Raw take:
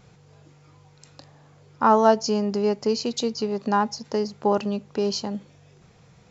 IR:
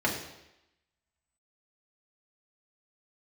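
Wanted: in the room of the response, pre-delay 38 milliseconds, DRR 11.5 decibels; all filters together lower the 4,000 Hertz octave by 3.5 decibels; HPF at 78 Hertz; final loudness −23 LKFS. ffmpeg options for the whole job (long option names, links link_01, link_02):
-filter_complex "[0:a]highpass=78,equalizer=frequency=4000:width_type=o:gain=-4.5,asplit=2[link_01][link_02];[1:a]atrim=start_sample=2205,adelay=38[link_03];[link_02][link_03]afir=irnorm=-1:irlink=0,volume=-22.5dB[link_04];[link_01][link_04]amix=inputs=2:normalize=0"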